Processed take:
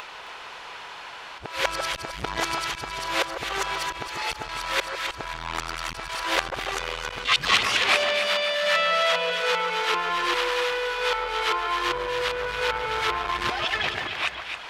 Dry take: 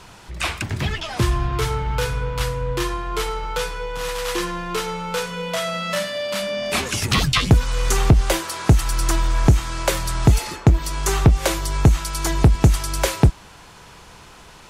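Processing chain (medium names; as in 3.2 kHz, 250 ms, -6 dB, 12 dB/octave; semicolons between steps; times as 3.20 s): reverse the whole clip; treble shelf 2.3 kHz +9.5 dB; slow attack 353 ms; three-band isolator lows -21 dB, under 420 Hz, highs -23 dB, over 3.6 kHz; upward compressor, threshold -37 dBFS; on a send: two-band feedback delay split 1.6 kHz, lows 150 ms, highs 267 ms, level -7 dB; on the sum: transformer saturation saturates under 2.6 kHz; trim +2 dB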